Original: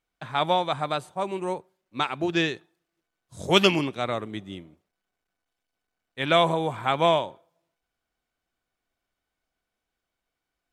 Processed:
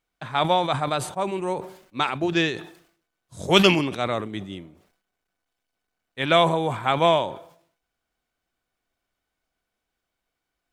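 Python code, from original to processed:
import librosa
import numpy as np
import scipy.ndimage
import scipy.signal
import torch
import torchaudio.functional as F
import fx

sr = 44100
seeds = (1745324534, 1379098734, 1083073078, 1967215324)

y = fx.sustainer(x, sr, db_per_s=100.0)
y = F.gain(torch.from_numpy(y), 2.0).numpy()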